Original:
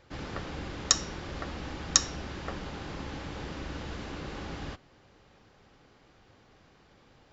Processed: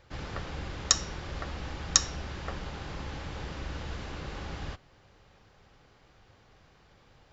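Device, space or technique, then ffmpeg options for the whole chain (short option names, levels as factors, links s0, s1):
low shelf boost with a cut just above: -af "lowshelf=f=110:g=4.5,equalizer=f=270:t=o:w=1.1:g=-5.5"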